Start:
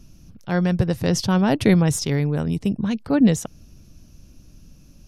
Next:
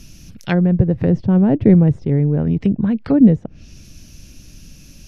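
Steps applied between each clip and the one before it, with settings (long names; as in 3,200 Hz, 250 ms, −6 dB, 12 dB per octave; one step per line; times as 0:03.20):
high shelf with overshoot 1,500 Hz +7 dB, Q 1.5
treble cut that deepens with the level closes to 510 Hz, closed at −17.5 dBFS
level +6 dB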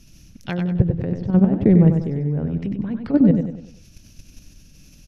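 output level in coarse steps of 12 dB
on a send: repeating echo 96 ms, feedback 41%, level −6.5 dB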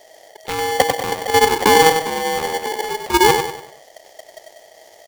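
ring modulator with a square carrier 640 Hz
level +1 dB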